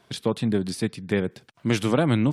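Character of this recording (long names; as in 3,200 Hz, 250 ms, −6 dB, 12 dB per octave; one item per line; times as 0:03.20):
background noise floor −60 dBFS
spectral slope −6.0 dB per octave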